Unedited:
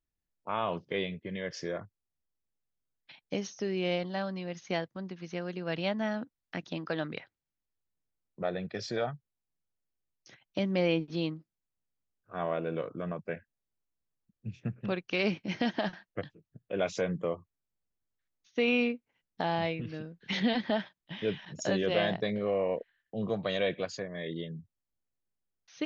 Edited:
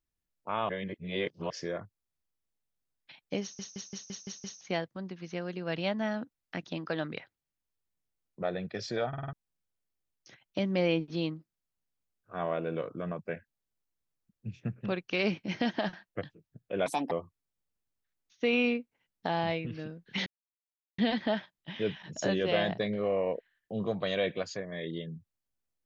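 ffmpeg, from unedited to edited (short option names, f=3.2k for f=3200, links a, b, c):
-filter_complex "[0:a]asplit=18[a][b][c][d][e][f][g][h][i][j][k][l][m][n][o][p][q][r];[a]atrim=end=0.692[s];[b]atrim=start=0.688:end=1.502,asetpts=PTS-STARTPTS,areverse[t];[c]atrim=start=1.498:end=3.592[u];[d]atrim=start=3.418:end=3.592[v];[e]atrim=start=3.418:end=3.592[w];[f]atrim=start=3.418:end=3.592[x];[g]atrim=start=3.418:end=3.592[y];[h]atrim=start=3.418:end=3.592[z];[i]atrim=start=3.418:end=3.592[aa];[j]atrim=start=4.608:end=9.132[ab];[k]atrim=start=9.078:end=9.132[ac];[l]atrim=start=9.078:end=9.132[ad];[m]atrim=start=9.078:end=9.132[ae];[n]atrim=start=9.078:end=9.132[af];[o]atrim=start=9.328:end=16.864[ag];[p]atrim=start=16.86:end=17.26,asetpts=PTS-STARTPTS,asetrate=69678,aresample=44100[ah];[q]atrim=start=17.256:end=20.41,asetpts=PTS-STARTPTS,afade=t=out:st=3.15:d=0.004:c=hsin,apad=pad_dur=0.72[ai];[r]atrim=start=20.41,asetpts=PTS-STARTPTS,afade=t=in:d=0.004:c=hsin[aj];[s][t]acrossfade=d=0.004:c1=hsin:c2=hsin[ak];[ak][u]acrossfade=d=0.004:c1=hsin:c2=hsin[al];[al][v]acrossfade=d=0.004:c1=hsin:c2=hsin[am];[am][w]acrossfade=d=0.004:c1=hsin:c2=hsin[an];[an][x]acrossfade=d=0.004:c1=hsin:c2=hsin[ao];[ao][y]acrossfade=d=0.004:c1=hsin:c2=hsin[ap];[ap][z]acrossfade=d=0.004:c1=hsin:c2=hsin[aq];[aq][aa]acrossfade=d=0.004:c1=hsin:c2=hsin[ar];[ar][ab]acrossfade=d=0.004:c1=hsin:c2=hsin[as];[as][ac]acrossfade=d=0.004:c1=hsin:c2=hsin[at];[at][ad]acrossfade=d=0.004:c1=hsin:c2=hsin[au];[au][ae]acrossfade=d=0.004:c1=hsin:c2=hsin[av];[av][af]acrossfade=d=0.004:c1=hsin:c2=hsin[aw];[aw][ag]acrossfade=d=0.004:c1=hsin:c2=hsin[ax];[ax][ah]acrossfade=d=0.004:c1=hsin:c2=hsin[ay];[ai][aj]concat=n=2:v=0:a=1[az];[ay][az]acrossfade=d=0.004:c1=hsin:c2=hsin"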